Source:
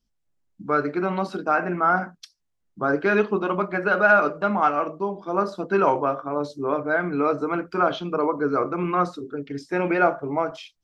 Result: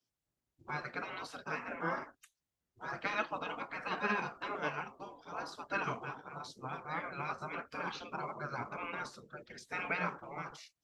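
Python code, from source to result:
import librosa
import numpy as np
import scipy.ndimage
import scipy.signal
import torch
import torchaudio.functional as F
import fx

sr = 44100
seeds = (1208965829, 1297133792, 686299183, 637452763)

y = fx.spec_gate(x, sr, threshold_db=-15, keep='weak')
y = y * 10.0 ** (-3.5 / 20.0)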